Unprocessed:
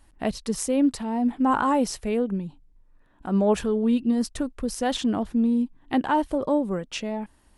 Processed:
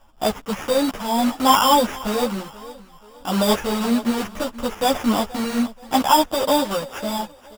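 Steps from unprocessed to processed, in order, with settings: block-companded coder 3-bit; level-controlled noise filter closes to 1.6 kHz, open at -21 dBFS; high-order bell 860 Hz +9 dB; in parallel at -5 dB: hard clipper -15.5 dBFS, distortion -10 dB; on the sum: sample-rate reducer 4.2 kHz, jitter 0%; feedback delay 479 ms, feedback 36%, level -19 dB; three-phase chorus

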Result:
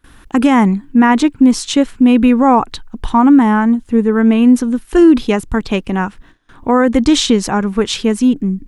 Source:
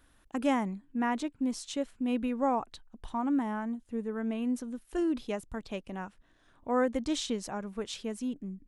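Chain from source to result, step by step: peaking EQ 610 Hz -8.5 dB 0.47 oct; gate with hold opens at -55 dBFS; treble shelf 3.9 kHz -5.5 dB; loudness maximiser +24 dB; trim -1 dB

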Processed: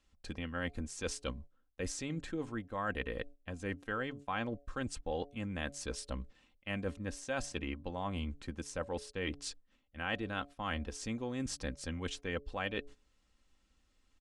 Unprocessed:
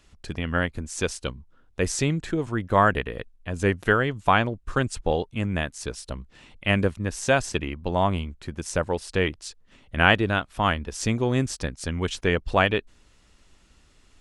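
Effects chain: reverse; compression 5:1, threshold -32 dBFS, peak gain reduction 18 dB; reverse; low-pass 9.9 kHz 12 dB/octave; de-hum 142.1 Hz, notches 5; gate -46 dBFS, range -13 dB; comb 3.8 ms, depth 43%; trim -3.5 dB

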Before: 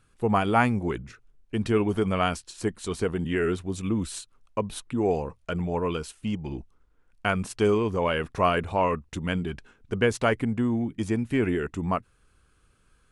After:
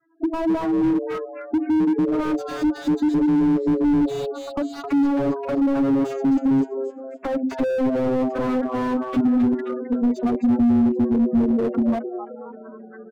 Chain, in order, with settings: vocoder on a note that slides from E4, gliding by -7 st; recorder AGC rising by 75 dB/s; spectral gate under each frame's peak -10 dB strong; level-controlled noise filter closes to 2.2 kHz, open at -20.5 dBFS; bass shelf 460 Hz -2 dB; comb 7.2 ms, depth 90%; peak limiter -17.5 dBFS, peak gain reduction 10 dB; frequency-shifting echo 263 ms, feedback 40%, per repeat +130 Hz, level -11.5 dB; slew-rate limiter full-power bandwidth 23 Hz; trim +6 dB

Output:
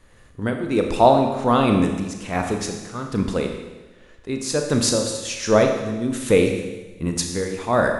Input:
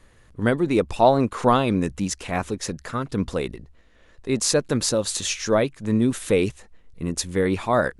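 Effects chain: tremolo triangle 1.3 Hz, depth 80%; Schroeder reverb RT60 1.2 s, combs from 26 ms, DRR 3.5 dB; trim +3.5 dB

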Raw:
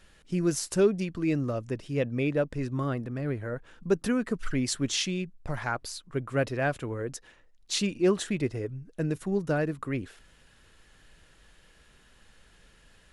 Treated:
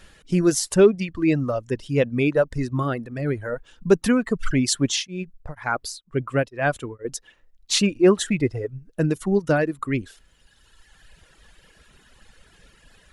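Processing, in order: reverb removal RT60 1.8 s; 4.84–7.05 s: tremolo of two beating tones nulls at 2.1 Hz; trim +8.5 dB

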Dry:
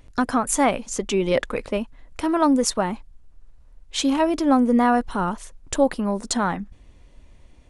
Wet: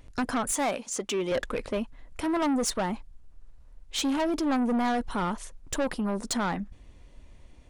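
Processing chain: 0.52–1.32 s: high-pass 340 Hz 6 dB/octave; saturation -21.5 dBFS, distortion -8 dB; trim -1.5 dB

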